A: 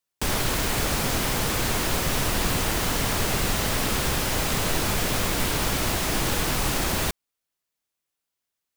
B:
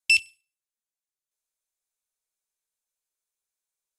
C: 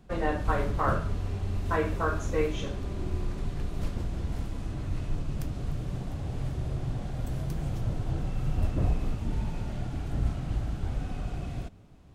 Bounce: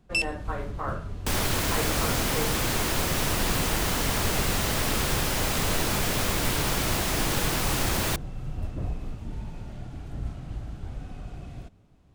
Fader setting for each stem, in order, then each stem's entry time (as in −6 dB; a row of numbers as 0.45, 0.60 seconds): −1.5, −7.0, −5.0 decibels; 1.05, 0.05, 0.00 seconds